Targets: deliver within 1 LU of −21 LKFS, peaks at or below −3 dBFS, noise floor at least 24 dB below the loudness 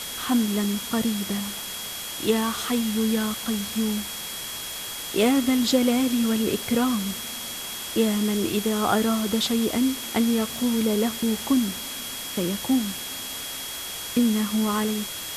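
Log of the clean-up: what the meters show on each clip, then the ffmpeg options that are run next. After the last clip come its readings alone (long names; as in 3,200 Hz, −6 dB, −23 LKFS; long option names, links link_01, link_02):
interfering tone 3,300 Hz; level of the tone −37 dBFS; background noise floor −34 dBFS; target noise floor −49 dBFS; integrated loudness −24.5 LKFS; sample peak −8.0 dBFS; target loudness −21.0 LKFS
→ -af "bandreject=frequency=3300:width=30"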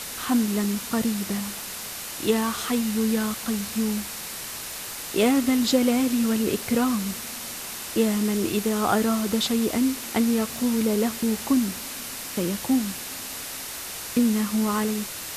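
interfering tone none found; background noise floor −35 dBFS; target noise floor −49 dBFS
→ -af "afftdn=noise_reduction=14:noise_floor=-35"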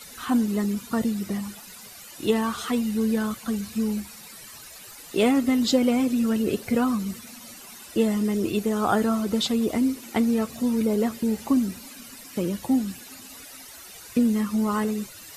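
background noise floor −44 dBFS; target noise floor −49 dBFS
→ -af "afftdn=noise_reduction=6:noise_floor=-44"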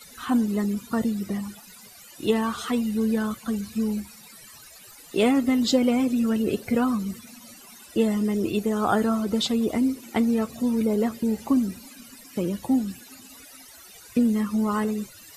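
background noise floor −48 dBFS; target noise floor −49 dBFS
→ -af "afftdn=noise_reduction=6:noise_floor=-48"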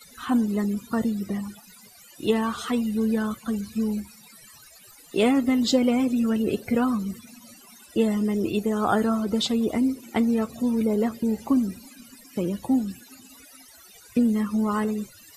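background noise floor −51 dBFS; integrated loudness −25.0 LKFS; sample peak −9.0 dBFS; target loudness −21.0 LKFS
→ -af "volume=4dB"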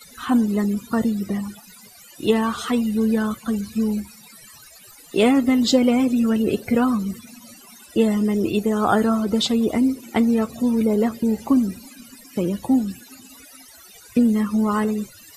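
integrated loudness −21.0 LKFS; sample peak −5.0 dBFS; background noise floor −47 dBFS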